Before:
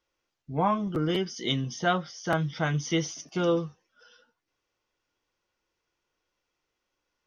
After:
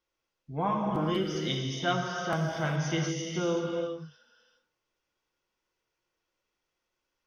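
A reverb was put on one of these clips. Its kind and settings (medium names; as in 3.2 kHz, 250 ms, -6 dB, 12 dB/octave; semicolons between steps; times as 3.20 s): gated-style reverb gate 440 ms flat, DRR 0 dB; trim -5 dB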